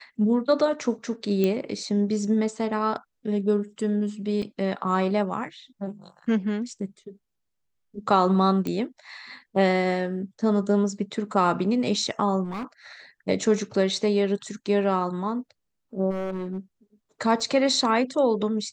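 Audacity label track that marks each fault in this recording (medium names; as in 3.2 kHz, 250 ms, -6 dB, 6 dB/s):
1.440000	1.440000	pop -12 dBFS
4.420000	4.420000	dropout 3.4 ms
8.670000	8.670000	pop -16 dBFS
12.440000	12.640000	clipped -28.5 dBFS
16.100000	16.580000	clipped -26 dBFS
17.400000	17.400000	dropout 3.3 ms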